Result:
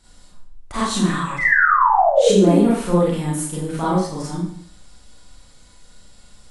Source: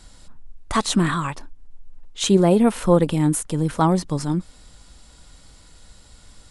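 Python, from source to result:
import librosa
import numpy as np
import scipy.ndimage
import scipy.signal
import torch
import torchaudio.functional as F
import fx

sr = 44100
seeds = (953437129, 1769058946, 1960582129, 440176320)

y = fx.spec_paint(x, sr, seeds[0], shape='fall', start_s=1.38, length_s=1.2, low_hz=260.0, high_hz=2100.0, level_db=-14.0)
y = fx.rev_schroeder(y, sr, rt60_s=0.57, comb_ms=31, drr_db=-8.5)
y = y * librosa.db_to_amplitude(-9.5)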